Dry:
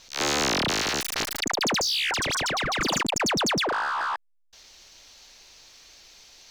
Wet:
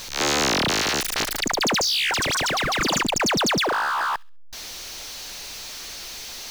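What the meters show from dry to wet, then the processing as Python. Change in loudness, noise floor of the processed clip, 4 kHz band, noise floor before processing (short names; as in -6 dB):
+3.5 dB, -37 dBFS, +3.5 dB, -64 dBFS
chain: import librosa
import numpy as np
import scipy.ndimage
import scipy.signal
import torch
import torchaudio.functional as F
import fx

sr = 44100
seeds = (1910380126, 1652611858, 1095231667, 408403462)

y = x + 0.5 * 10.0 ** (-34.0 / 20.0) * np.sign(x)
y = fx.echo_wet_highpass(y, sr, ms=67, feedback_pct=31, hz=2500.0, wet_db=-20.5)
y = y * librosa.db_to_amplitude(2.0)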